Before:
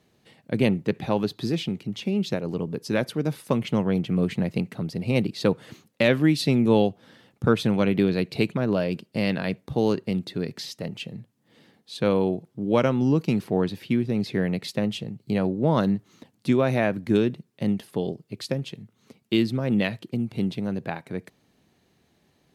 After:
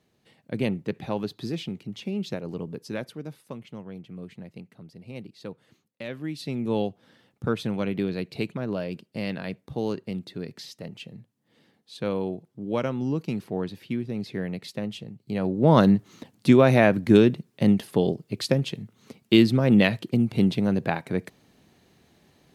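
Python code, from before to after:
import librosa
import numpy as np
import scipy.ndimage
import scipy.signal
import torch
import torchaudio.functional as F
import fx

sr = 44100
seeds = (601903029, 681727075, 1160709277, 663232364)

y = fx.gain(x, sr, db=fx.line((2.7, -5.0), (3.67, -16.5), (6.03, -16.5), (6.81, -6.0), (15.28, -6.0), (15.73, 5.0)))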